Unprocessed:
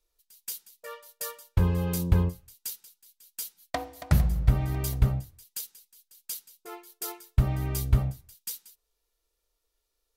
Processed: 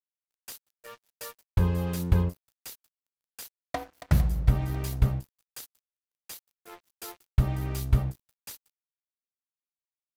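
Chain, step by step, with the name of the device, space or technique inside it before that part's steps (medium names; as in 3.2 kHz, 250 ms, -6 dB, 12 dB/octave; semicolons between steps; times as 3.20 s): early transistor amplifier (crossover distortion -44 dBFS; slew-rate limiter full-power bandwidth 110 Hz)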